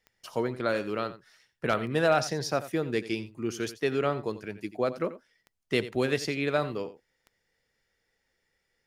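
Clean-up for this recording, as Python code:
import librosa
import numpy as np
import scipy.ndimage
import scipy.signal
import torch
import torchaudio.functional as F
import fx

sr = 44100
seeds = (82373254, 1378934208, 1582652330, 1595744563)

y = fx.fix_declip(x, sr, threshold_db=-14.0)
y = fx.fix_declick_ar(y, sr, threshold=10.0)
y = fx.fix_echo_inverse(y, sr, delay_ms=87, level_db=-15.0)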